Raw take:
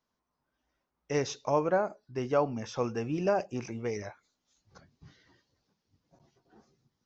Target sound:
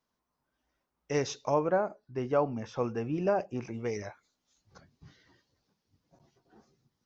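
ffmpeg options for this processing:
-filter_complex "[0:a]asettb=1/sr,asplit=3[a][b][c];[a]atrim=end=1.544[d];[b]atrim=start=1.54:end=3.74,asetpts=PTS-STARTPTS,afade=t=in:d=0.004:c=qsin,afade=t=out:st=2.196:d=0.004:c=qsin,highshelf=f=3.8k:g=-11.5[e];[c]atrim=start=3.736[f];[d][e]acrossfade=d=0.004:c1=hsin:c2=qsin[g];[g][f]acrossfade=d=0.004:c1=qsin:c2=hsin"

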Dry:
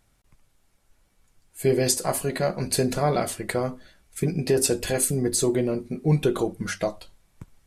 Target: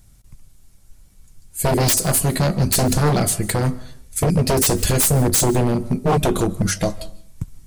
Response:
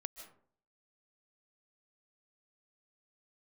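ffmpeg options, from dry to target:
-filter_complex "[0:a]bass=f=250:g=14,treble=f=4k:g=11,aeval=exprs='0.211*(abs(mod(val(0)/0.211+3,4)-2)-1)':c=same,asplit=2[a][b];[1:a]atrim=start_sample=2205[c];[b][c]afir=irnorm=-1:irlink=0,volume=-5.5dB[d];[a][d]amix=inputs=2:normalize=0"

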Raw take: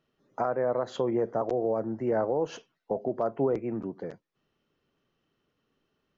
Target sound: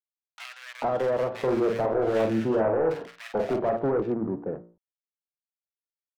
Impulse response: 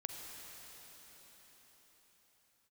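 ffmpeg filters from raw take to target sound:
-filter_complex "[0:a]lowpass=2.6k,bandreject=f=57.83:t=h:w=4,bandreject=f=115.66:t=h:w=4,bandreject=f=173.49:t=h:w=4,bandreject=f=231.32:t=h:w=4,bandreject=f=289.15:t=h:w=4,bandreject=f=346.98:t=h:w=4,bandreject=f=404.81:t=h:w=4,bandreject=f=462.64:t=h:w=4,bandreject=f=520.47:t=h:w=4,bandreject=f=578.3:t=h:w=4,bandreject=f=636.13:t=h:w=4,bandreject=f=693.96:t=h:w=4,bandreject=f=751.79:t=h:w=4,bandreject=f=809.62:t=h:w=4,bandreject=f=867.45:t=h:w=4,bandreject=f=925.28:t=h:w=4,bandreject=f=983.11:t=h:w=4,bandreject=f=1.04094k:t=h:w=4,bandreject=f=1.09877k:t=h:w=4,bandreject=f=1.1566k:t=h:w=4,bandreject=f=1.21443k:t=h:w=4,bandreject=f=1.27226k:t=h:w=4,bandreject=f=1.33009k:t=h:w=4,bandreject=f=1.38792k:t=h:w=4,bandreject=f=1.44575k:t=h:w=4,bandreject=f=1.50358k:t=h:w=4,bandreject=f=1.56141k:t=h:w=4,bandreject=f=1.61924k:t=h:w=4,bandreject=f=1.67707k:t=h:w=4,bandreject=f=1.7349k:t=h:w=4,bandreject=f=1.79273k:t=h:w=4,bandreject=f=1.85056k:t=h:w=4,bandreject=f=1.90839k:t=h:w=4,bandreject=f=1.96622k:t=h:w=4,bandreject=f=2.02405k:t=h:w=4,bandreject=f=2.08188k:t=h:w=4,agate=range=-33dB:threshold=-54dB:ratio=3:detection=peak,acontrast=59,acrusher=bits=10:mix=0:aa=0.000001,adynamicsmooth=sensitivity=6:basefreq=510,asoftclip=type=hard:threshold=-21dB,asettb=1/sr,asplit=3[a][b][c];[a]atrim=end=0.864[d];[b]atrim=start=0.86:end=3.33,asetpts=PTS-STARTPTS,afade=t=in:d=0.004:c=qsin,afade=t=out:st=2.466:d=0.004:c=qsin,asplit=2[e][f];[f]adelay=45,volume=-5dB[g];[e][g]amix=inputs=2:normalize=0,atrim=end_sample=108927[h];[c]atrim=start=3.326[i];[d][h]acrossfade=d=0.004:c1=hsin:c2=qsin[j];[j][i]acrossfade=d=0.004:c1=qsin:c2=hsin,acrossover=split=1700[k][l];[k]adelay=440[m];[m][l]amix=inputs=2:normalize=0"

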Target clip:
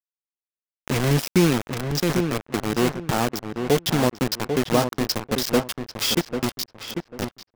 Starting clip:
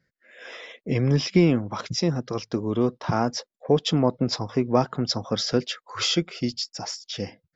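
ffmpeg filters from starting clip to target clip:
-filter_complex "[0:a]acrusher=bits=3:mix=0:aa=0.000001,asplit=2[a][b];[b]adelay=794,lowpass=f=2.1k:p=1,volume=-6.5dB,asplit=2[c][d];[d]adelay=794,lowpass=f=2.1k:p=1,volume=0.25,asplit=2[e][f];[f]adelay=794,lowpass=f=2.1k:p=1,volume=0.25[g];[c][e][g]amix=inputs=3:normalize=0[h];[a][h]amix=inputs=2:normalize=0"

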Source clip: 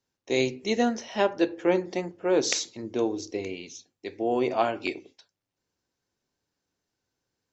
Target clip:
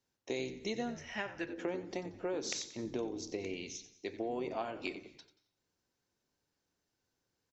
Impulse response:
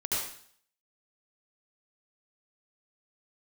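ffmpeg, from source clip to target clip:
-filter_complex "[0:a]asettb=1/sr,asplit=3[a][b][c];[a]atrim=end=0.954[d];[b]atrim=start=0.95:end=1.48,asetpts=PTS-STARTPTS,afade=t=in:d=0.004:c=qsin,afade=t=out:st=0.526:d=0.004:c=qsin,equalizer=f=125:t=o:w=1:g=6,equalizer=f=250:t=o:w=1:g=-9,equalizer=f=500:t=o:w=1:g=-11,equalizer=f=1k:t=o:w=1:g=-5,equalizer=f=2k:t=o:w=1:g=8,equalizer=f=4k:t=o:w=1:g=-12[e];[c]atrim=start=1.476[f];[d][e]acrossfade=d=0.004:c1=hsin:c2=qsin[g];[g][f]acrossfade=d=0.004:c1=qsin:c2=hsin,acompressor=threshold=-33dB:ratio=6,asplit=4[h][i][j][k];[i]adelay=90,afreqshift=-77,volume=-13.5dB[l];[j]adelay=180,afreqshift=-154,volume=-22.6dB[m];[k]adelay=270,afreqshift=-231,volume=-31.7dB[n];[h][l][m][n]amix=inputs=4:normalize=0,asplit=2[o][p];[1:a]atrim=start_sample=2205,adelay=118[q];[p][q]afir=irnorm=-1:irlink=0,volume=-29dB[r];[o][r]amix=inputs=2:normalize=0,volume=-2dB"

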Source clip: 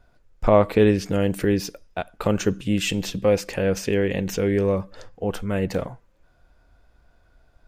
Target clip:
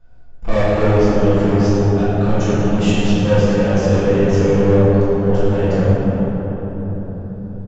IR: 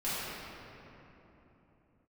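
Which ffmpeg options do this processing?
-filter_complex "[0:a]lowshelf=f=430:g=7.5,aresample=16000,asoftclip=type=hard:threshold=-15dB,aresample=44100[a];[1:a]atrim=start_sample=2205,asetrate=28224,aresample=44100[b];[a][b]afir=irnorm=-1:irlink=0,volume=-6dB"

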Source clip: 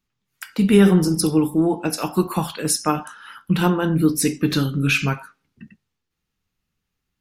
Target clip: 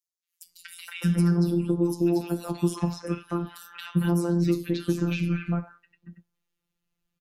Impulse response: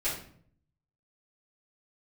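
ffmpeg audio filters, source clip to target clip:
-filter_complex "[0:a]acrossover=split=1700|5100[a][b][c];[b]adelay=230[d];[a]adelay=460[e];[e][d][c]amix=inputs=3:normalize=0,afftfilt=real='hypot(re,im)*cos(PI*b)':imag='0':win_size=1024:overlap=0.75,acrossover=split=440|3000|6100[f][g][h][i];[f]acompressor=threshold=-20dB:ratio=4[j];[g]acompressor=threshold=-37dB:ratio=4[k];[h]acompressor=threshold=-47dB:ratio=4[l];[i]acompressor=threshold=-46dB:ratio=4[m];[j][k][l][m]amix=inputs=4:normalize=0"

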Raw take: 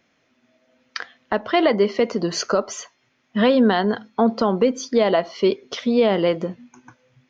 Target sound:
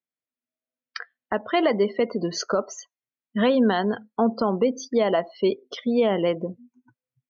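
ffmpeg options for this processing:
-af "afftdn=nr=32:nf=-32,volume=-3.5dB"

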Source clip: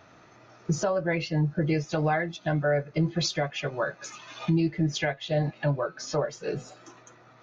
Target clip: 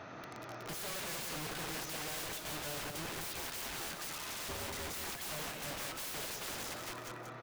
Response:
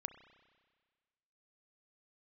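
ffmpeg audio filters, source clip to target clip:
-filter_complex "[0:a]highpass=f=120:p=1,highshelf=f=4.9k:g=-10.5,asoftclip=type=tanh:threshold=-30.5dB,asettb=1/sr,asplit=3[a][b][c];[a]atrim=end=3.064[d];[b]atrim=start=3.06:end=5.21,asetpts=PTS-STARTPTS,afade=t=in:d=0.004:c=qsin,afade=t=out:st=2.146:d=0.004:c=qsin,tremolo=f=78:d=0.462[e];[c]atrim=start=5.206[f];[d][e]acrossfade=d=0.004:c1=hsin:c2=qsin[g];[g][f]acrossfade=d=0.004:c1=qsin:c2=hsin,aeval=exprs='(mod(178*val(0)+1,2)-1)/178':c=same,aecho=1:1:183|366|549|732:0.501|0.155|0.0482|0.0149,volume=7dB"

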